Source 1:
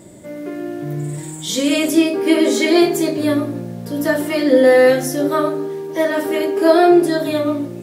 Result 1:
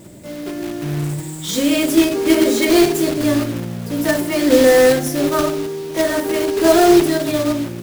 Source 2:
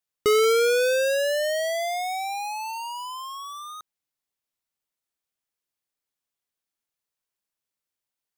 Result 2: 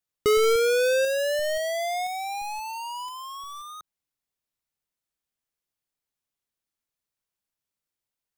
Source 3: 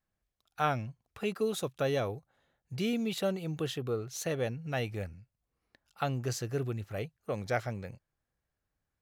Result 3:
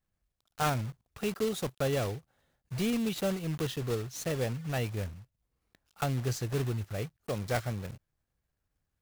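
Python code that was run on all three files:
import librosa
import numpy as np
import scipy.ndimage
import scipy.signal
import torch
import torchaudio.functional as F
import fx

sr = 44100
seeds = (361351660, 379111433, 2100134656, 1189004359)

y = fx.block_float(x, sr, bits=3)
y = fx.low_shelf(y, sr, hz=200.0, db=7.0)
y = y * librosa.db_to_amplitude(-1.5)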